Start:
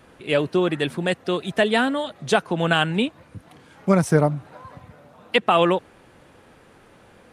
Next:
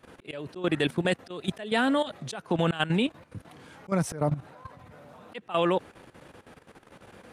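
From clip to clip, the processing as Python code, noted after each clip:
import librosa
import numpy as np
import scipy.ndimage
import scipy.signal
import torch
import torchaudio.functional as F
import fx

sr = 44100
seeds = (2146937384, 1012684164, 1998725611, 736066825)

y = fx.highpass(x, sr, hz=43.0, slope=6)
y = fx.auto_swell(y, sr, attack_ms=202.0)
y = fx.level_steps(y, sr, step_db=13)
y = y * 10.0 ** (2.5 / 20.0)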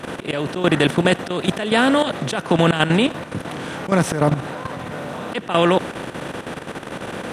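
y = fx.bin_compress(x, sr, power=0.6)
y = y + 10.0 ** (-22.0 / 20.0) * np.pad(y, (int(85 * sr / 1000.0), 0))[:len(y)]
y = y * 10.0 ** (6.5 / 20.0)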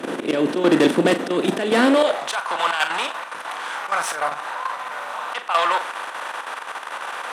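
y = fx.tube_stage(x, sr, drive_db=14.0, bias=0.5)
y = fx.filter_sweep_highpass(y, sr, from_hz=280.0, to_hz=1000.0, start_s=1.8, end_s=2.32, q=2.1)
y = fx.doubler(y, sr, ms=40.0, db=-9.5)
y = y * 10.0 ** (2.0 / 20.0)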